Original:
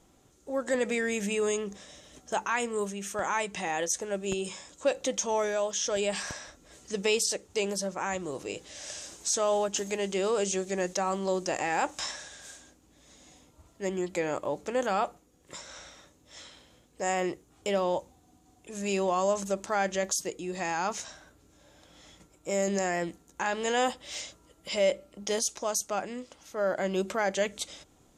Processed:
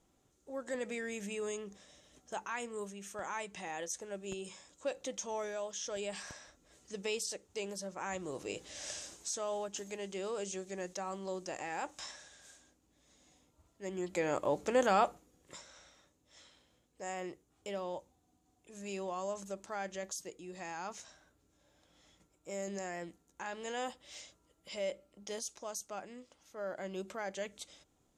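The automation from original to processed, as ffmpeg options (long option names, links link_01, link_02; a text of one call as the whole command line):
ffmpeg -i in.wav -af "volume=9dB,afade=type=in:start_time=7.82:duration=1.06:silence=0.375837,afade=type=out:start_time=8.88:duration=0.46:silence=0.354813,afade=type=in:start_time=13.83:duration=0.71:silence=0.281838,afade=type=out:start_time=15.05:duration=0.67:silence=0.251189" out.wav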